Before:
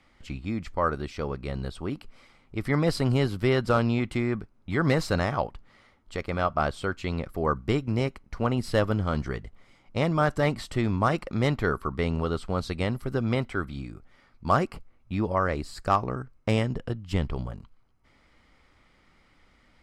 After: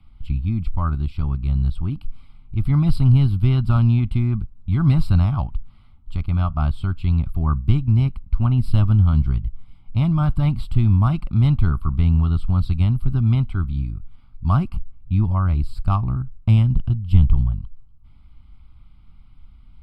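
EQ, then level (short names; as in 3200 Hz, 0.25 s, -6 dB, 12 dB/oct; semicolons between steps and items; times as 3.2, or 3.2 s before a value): tone controls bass +12 dB, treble +1 dB; low shelf 99 Hz +12 dB; fixed phaser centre 1800 Hz, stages 6; -2.5 dB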